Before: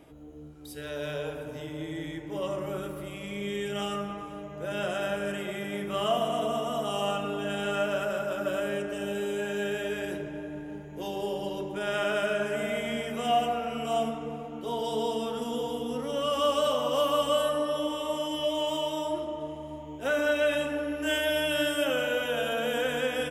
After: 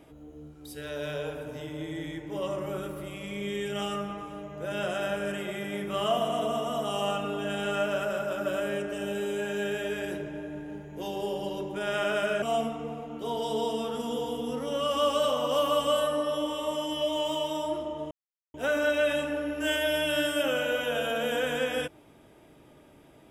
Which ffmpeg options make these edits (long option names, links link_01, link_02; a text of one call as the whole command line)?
ffmpeg -i in.wav -filter_complex "[0:a]asplit=4[link_01][link_02][link_03][link_04];[link_01]atrim=end=12.422[link_05];[link_02]atrim=start=13.838:end=19.53,asetpts=PTS-STARTPTS,afade=type=out:start_time=5.688:duration=0.004:curve=hsin[link_06];[link_03]atrim=start=19.53:end=19.96,asetpts=PTS-STARTPTS,volume=0[link_07];[link_04]atrim=start=19.96,asetpts=PTS-STARTPTS,afade=type=in:duration=0.004:curve=hsin[link_08];[link_06][link_07][link_08]concat=n=3:v=0:a=1[link_09];[link_05][link_09]acrossfade=duration=0.004:curve1=hsin:curve2=hsin" out.wav